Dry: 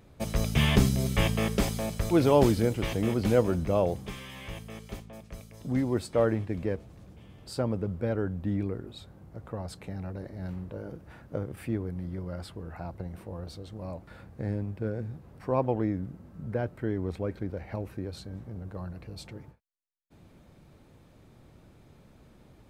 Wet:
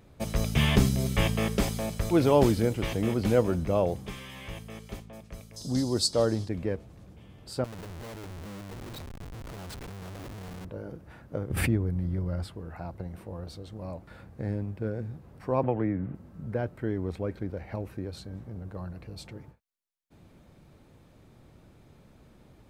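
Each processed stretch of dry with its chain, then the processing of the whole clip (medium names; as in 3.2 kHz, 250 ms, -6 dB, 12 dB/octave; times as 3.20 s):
5.56–6.49 s: low-pass 11 kHz + resonant high shelf 3.3 kHz +13 dB, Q 3
7.64–10.65 s: compression 5:1, threshold -35 dBFS + Schmitt trigger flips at -47 dBFS
11.50–12.48 s: bass shelf 150 Hz +10.5 dB + swell ahead of each attack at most 37 dB/s
15.63–16.15 s: high-pass 41 Hz + resonant high shelf 3.4 kHz -12 dB, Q 1.5 + three bands compressed up and down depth 70%
whole clip: none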